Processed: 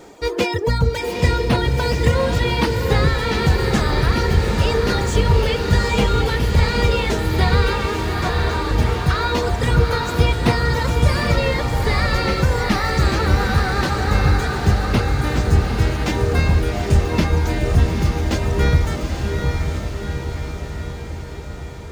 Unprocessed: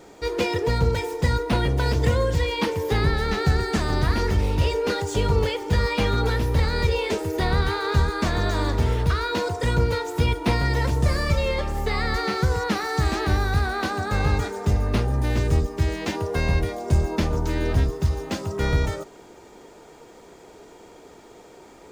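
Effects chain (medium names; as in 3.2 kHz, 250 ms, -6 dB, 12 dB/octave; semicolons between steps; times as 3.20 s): 7.73–8.71 s: rippled Chebyshev high-pass 260 Hz, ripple 6 dB; reverb removal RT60 1.8 s; echo that smears into a reverb 826 ms, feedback 62%, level -3.5 dB; trim +5 dB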